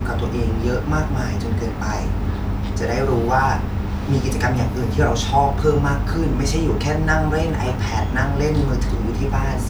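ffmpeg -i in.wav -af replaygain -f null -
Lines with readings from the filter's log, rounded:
track_gain = +3.5 dB
track_peak = 0.432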